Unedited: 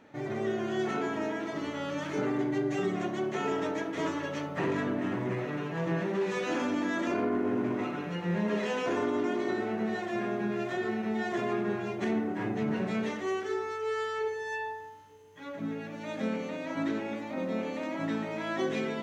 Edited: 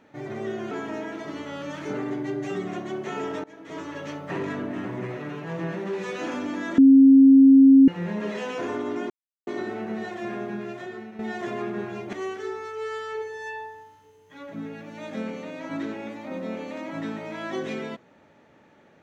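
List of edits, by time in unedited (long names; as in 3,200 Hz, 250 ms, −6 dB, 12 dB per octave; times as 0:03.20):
0:00.71–0:00.99: remove
0:03.72–0:04.32: fade in, from −21.5 dB
0:07.06–0:08.16: beep over 270 Hz −9 dBFS
0:09.38: splice in silence 0.37 s
0:10.34–0:11.10: fade out, to −10.5 dB
0:12.04–0:13.19: remove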